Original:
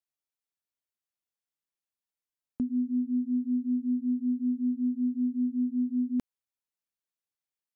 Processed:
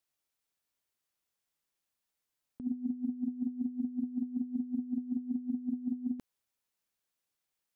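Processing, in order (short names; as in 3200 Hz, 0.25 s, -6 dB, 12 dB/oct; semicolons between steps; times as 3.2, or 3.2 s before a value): negative-ratio compressor -34 dBFS, ratio -0.5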